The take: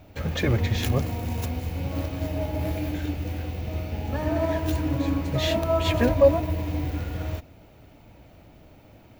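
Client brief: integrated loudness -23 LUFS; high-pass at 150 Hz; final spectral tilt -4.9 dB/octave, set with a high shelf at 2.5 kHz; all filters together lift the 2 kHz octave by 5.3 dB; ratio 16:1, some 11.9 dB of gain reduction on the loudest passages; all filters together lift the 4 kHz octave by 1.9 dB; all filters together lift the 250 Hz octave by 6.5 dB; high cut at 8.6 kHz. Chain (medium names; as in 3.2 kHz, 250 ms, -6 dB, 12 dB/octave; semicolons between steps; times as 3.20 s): high-pass 150 Hz; low-pass 8.6 kHz; peaking EQ 250 Hz +8.5 dB; peaking EQ 2 kHz +9 dB; treble shelf 2.5 kHz -9 dB; peaking EQ 4 kHz +6.5 dB; compression 16:1, threshold -22 dBFS; trim +5.5 dB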